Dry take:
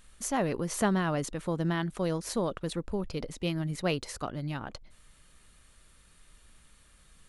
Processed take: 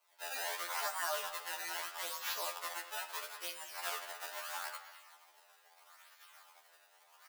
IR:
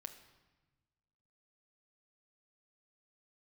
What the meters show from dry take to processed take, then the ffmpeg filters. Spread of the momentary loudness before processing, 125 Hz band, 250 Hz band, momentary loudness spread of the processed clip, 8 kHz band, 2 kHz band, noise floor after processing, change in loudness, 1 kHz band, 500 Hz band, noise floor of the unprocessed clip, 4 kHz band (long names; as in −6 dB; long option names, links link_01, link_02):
9 LU, below −40 dB, −35.5 dB, 21 LU, −3.5 dB, −1.5 dB, −67 dBFS, −7.5 dB, −5.0 dB, −14.5 dB, −60 dBFS, −0.5 dB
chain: -filter_complex "[0:a]acrusher=samples=23:mix=1:aa=0.000001:lfo=1:lforange=36.8:lforate=0.77,agate=range=-33dB:threshold=-51dB:ratio=3:detection=peak,highshelf=frequency=9500:gain=8.5,alimiter=limit=-21.5dB:level=0:latency=1:release=85,areverse,acompressor=mode=upward:threshold=-43dB:ratio=2.5,areverse,asoftclip=type=tanh:threshold=-23.5dB,highpass=frequency=780:width=0.5412,highpass=frequency=780:width=1.3066,asplit=2[link_01][link_02];[link_02]adelay=210,highpass=300,lowpass=3400,asoftclip=type=hard:threshold=-30.5dB,volume=-14dB[link_03];[link_01][link_03]amix=inputs=2:normalize=0[link_04];[1:a]atrim=start_sample=2205[link_05];[link_04][link_05]afir=irnorm=-1:irlink=0,afftfilt=real='re*2*eq(mod(b,4),0)':imag='im*2*eq(mod(b,4),0)':win_size=2048:overlap=0.75,volume=8.5dB"